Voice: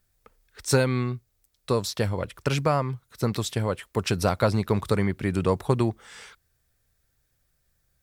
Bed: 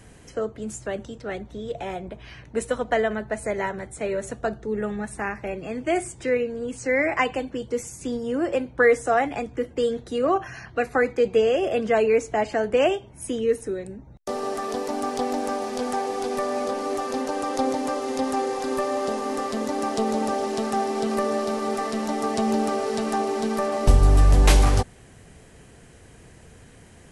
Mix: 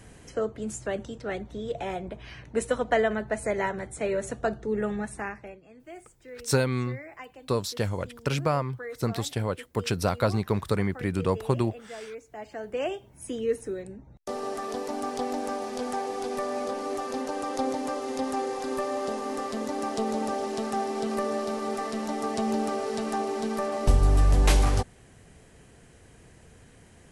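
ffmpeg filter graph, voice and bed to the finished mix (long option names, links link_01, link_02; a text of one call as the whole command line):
ffmpeg -i stem1.wav -i stem2.wav -filter_complex "[0:a]adelay=5800,volume=-2.5dB[link_01];[1:a]volume=15.5dB,afade=type=out:start_time=4.96:duration=0.65:silence=0.1,afade=type=in:start_time=12.26:duration=1.29:silence=0.149624[link_02];[link_01][link_02]amix=inputs=2:normalize=0" out.wav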